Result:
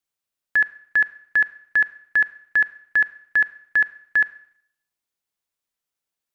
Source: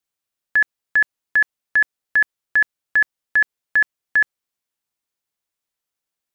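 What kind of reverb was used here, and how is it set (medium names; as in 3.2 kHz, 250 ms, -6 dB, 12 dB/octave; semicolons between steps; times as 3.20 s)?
Schroeder reverb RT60 0.66 s, combs from 32 ms, DRR 17.5 dB; trim -2 dB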